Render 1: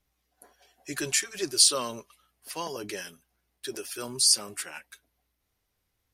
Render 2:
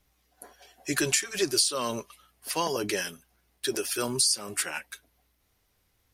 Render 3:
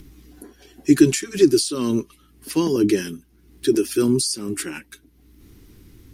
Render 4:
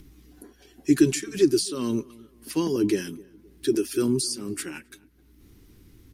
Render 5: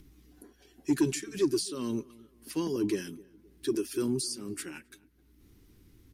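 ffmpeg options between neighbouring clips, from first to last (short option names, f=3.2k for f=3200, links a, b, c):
-af "acompressor=threshold=-28dB:ratio=16,volume=7dB"
-af "acompressor=mode=upward:threshold=-43dB:ratio=2.5,lowshelf=f=450:t=q:w=3:g=11.5"
-filter_complex "[0:a]asplit=2[a][b];[b]adelay=262,lowpass=f=1.2k:p=1,volume=-22dB,asplit=2[c][d];[d]adelay=262,lowpass=f=1.2k:p=1,volume=0.38,asplit=2[e][f];[f]adelay=262,lowpass=f=1.2k:p=1,volume=0.38[g];[a][c][e][g]amix=inputs=4:normalize=0,volume=-5dB"
-af "asoftclip=type=tanh:threshold=-10.5dB,volume=-6dB"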